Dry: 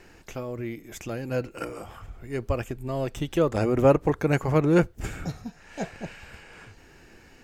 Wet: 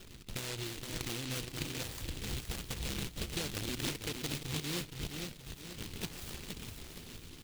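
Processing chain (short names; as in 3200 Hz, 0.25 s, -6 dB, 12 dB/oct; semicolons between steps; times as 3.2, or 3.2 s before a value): 2.08–3.34 cycle switcher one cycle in 2, inverted; 5.07–5.85 elliptic band-pass 1000–4400 Hz; compressor 12:1, threshold -36 dBFS, peak gain reduction 23 dB; decimation with a swept rate 40×, swing 160% 1.4 Hz; flange 0.37 Hz, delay 1.5 ms, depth 1.3 ms, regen -74%; feedback echo 0.47 s, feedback 40%, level -5.5 dB; noise-modulated delay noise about 3100 Hz, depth 0.39 ms; gain +4.5 dB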